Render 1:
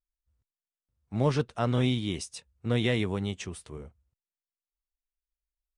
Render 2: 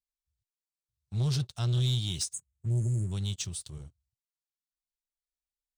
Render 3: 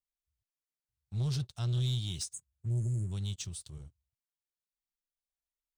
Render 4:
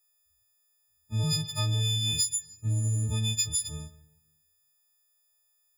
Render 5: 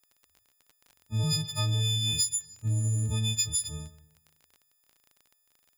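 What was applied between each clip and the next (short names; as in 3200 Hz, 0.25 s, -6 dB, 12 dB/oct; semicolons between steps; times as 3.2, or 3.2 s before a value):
spectral delete 2.33–3.12, 410–6300 Hz; ten-band EQ 125 Hz +9 dB, 250 Hz -10 dB, 500 Hz -11 dB, 1000 Hz -7 dB, 2000 Hz -11 dB, 4000 Hz +11 dB, 8000 Hz +9 dB; sample leveller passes 2; gain -8.5 dB
low shelf 100 Hz +5 dB; gain -5.5 dB
frequency quantiser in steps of 6 st; on a send at -16.5 dB: reverb RT60 0.95 s, pre-delay 0.103 s; on the sum: compressor 6:1, threshold -32 dBFS, peak gain reduction 11 dB; gain +7.5 dB
crackle 27/s -41 dBFS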